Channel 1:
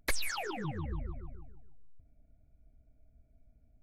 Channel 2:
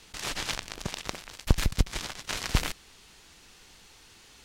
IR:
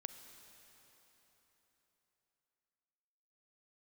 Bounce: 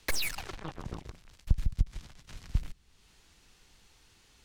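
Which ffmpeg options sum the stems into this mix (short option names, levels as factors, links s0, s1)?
-filter_complex "[0:a]acrusher=bits=4:mix=0:aa=0.5,volume=0.944[s0];[1:a]acrossover=split=210[s1][s2];[s2]acompressor=threshold=0.002:ratio=2[s3];[s1][s3]amix=inputs=2:normalize=0,lowshelf=f=120:g=6.5,volume=0.422[s4];[s0][s4]amix=inputs=2:normalize=0"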